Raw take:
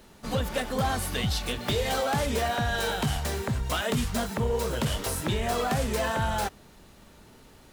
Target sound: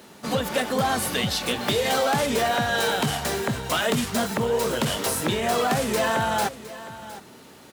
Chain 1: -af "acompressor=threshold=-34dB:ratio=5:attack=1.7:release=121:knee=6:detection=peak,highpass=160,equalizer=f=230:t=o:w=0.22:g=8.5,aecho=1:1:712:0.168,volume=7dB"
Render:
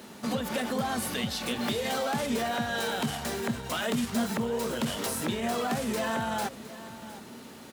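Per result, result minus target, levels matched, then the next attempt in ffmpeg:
compressor: peak gain reduction +8.5 dB; 250 Hz band +4.0 dB
-af "acompressor=threshold=-22.5dB:ratio=5:attack=1.7:release=121:knee=6:detection=peak,highpass=160,equalizer=f=230:t=o:w=0.22:g=8.5,aecho=1:1:712:0.168,volume=7dB"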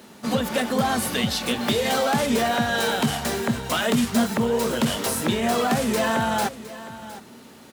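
250 Hz band +4.0 dB
-af "acompressor=threshold=-22.5dB:ratio=5:attack=1.7:release=121:knee=6:detection=peak,highpass=160,aecho=1:1:712:0.168,volume=7dB"

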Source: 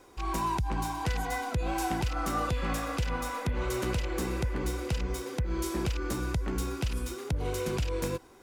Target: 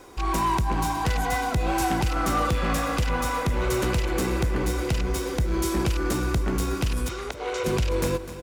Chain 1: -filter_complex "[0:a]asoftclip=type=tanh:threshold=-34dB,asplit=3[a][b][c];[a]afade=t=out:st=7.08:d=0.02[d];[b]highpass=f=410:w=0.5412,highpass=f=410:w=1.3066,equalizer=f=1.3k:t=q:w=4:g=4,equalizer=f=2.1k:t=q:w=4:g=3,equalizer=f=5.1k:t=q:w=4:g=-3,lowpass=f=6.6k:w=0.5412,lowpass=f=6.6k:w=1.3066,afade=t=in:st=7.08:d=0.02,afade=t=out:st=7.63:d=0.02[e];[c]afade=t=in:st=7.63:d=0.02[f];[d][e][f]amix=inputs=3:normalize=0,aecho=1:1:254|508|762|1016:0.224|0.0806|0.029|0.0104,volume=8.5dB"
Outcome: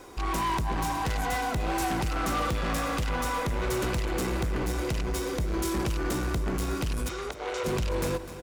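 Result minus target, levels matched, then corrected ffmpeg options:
soft clip: distortion +8 dB
-filter_complex "[0:a]asoftclip=type=tanh:threshold=-26dB,asplit=3[a][b][c];[a]afade=t=out:st=7.08:d=0.02[d];[b]highpass=f=410:w=0.5412,highpass=f=410:w=1.3066,equalizer=f=1.3k:t=q:w=4:g=4,equalizer=f=2.1k:t=q:w=4:g=3,equalizer=f=5.1k:t=q:w=4:g=-3,lowpass=f=6.6k:w=0.5412,lowpass=f=6.6k:w=1.3066,afade=t=in:st=7.08:d=0.02,afade=t=out:st=7.63:d=0.02[e];[c]afade=t=in:st=7.63:d=0.02[f];[d][e][f]amix=inputs=3:normalize=0,aecho=1:1:254|508|762|1016:0.224|0.0806|0.029|0.0104,volume=8.5dB"

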